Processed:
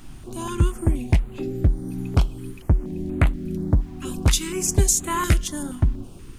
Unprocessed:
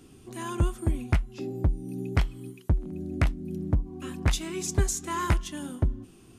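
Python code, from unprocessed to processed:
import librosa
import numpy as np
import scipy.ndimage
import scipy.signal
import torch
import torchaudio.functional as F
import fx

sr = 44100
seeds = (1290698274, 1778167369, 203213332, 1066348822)

y = fx.high_shelf(x, sr, hz=4900.0, db=8.0, at=(4.05, 5.63))
y = fx.dmg_noise_colour(y, sr, seeds[0], colour='brown', level_db=-45.0)
y = fx.filter_held_notch(y, sr, hz=4.2, low_hz=470.0, high_hz=5400.0)
y = y * 10.0 ** (6.0 / 20.0)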